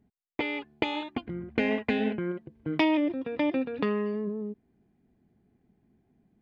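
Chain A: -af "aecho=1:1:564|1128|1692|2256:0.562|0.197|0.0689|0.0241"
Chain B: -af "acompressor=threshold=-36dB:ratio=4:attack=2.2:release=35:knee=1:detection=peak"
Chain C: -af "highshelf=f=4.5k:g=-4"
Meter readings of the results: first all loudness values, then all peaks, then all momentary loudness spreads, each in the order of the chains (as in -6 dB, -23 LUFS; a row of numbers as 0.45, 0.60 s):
-29.0, -39.0, -30.5 LUFS; -8.5, -18.5, -9.0 dBFS; 15, 5, 11 LU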